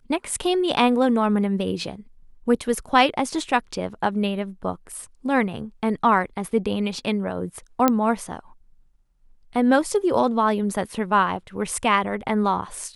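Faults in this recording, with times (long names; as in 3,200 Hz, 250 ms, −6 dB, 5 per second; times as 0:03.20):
0:07.88: click −4 dBFS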